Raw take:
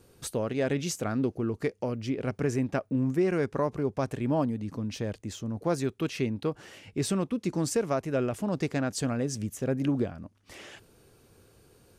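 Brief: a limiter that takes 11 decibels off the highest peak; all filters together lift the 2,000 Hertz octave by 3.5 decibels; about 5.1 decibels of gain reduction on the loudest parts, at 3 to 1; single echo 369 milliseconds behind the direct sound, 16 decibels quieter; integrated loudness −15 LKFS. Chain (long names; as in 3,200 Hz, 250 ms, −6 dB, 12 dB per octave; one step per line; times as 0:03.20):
parametric band 2,000 Hz +4.5 dB
downward compressor 3 to 1, threshold −29 dBFS
brickwall limiter −30 dBFS
single-tap delay 369 ms −16 dB
level +24 dB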